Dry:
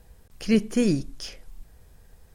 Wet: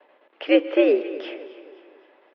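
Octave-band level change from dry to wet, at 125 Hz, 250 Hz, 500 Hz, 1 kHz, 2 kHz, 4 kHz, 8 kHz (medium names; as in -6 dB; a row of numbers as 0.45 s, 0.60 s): under -35 dB, +0.5 dB, +9.5 dB, no reading, +8.0 dB, +3.0 dB, under -30 dB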